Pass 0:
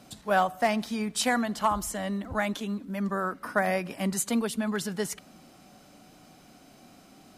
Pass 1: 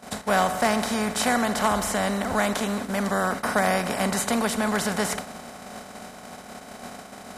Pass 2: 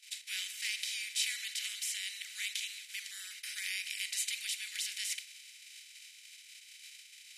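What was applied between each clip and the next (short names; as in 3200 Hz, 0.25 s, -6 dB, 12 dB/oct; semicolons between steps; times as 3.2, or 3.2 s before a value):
per-bin compression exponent 0.4; gate -28 dBFS, range -22 dB; gain -1.5 dB
steep high-pass 2300 Hz 48 dB/oct; tilt -3 dB/oct; gain +2.5 dB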